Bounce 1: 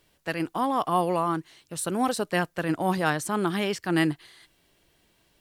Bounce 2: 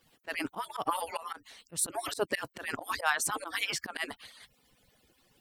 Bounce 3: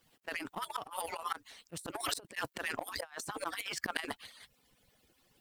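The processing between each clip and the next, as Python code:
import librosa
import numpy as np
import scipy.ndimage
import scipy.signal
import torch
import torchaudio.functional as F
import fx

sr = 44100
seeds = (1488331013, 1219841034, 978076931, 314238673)

y1 = fx.hpss_only(x, sr, part='percussive')
y1 = fx.auto_swell(y1, sr, attack_ms=124.0)
y1 = y1 * librosa.db_to_amplitude(3.5)
y2 = fx.law_mismatch(y1, sr, coded='A')
y2 = fx.over_compress(y2, sr, threshold_db=-39.0, ratio=-0.5)
y2 = y2 * librosa.db_to_amplitude(1.0)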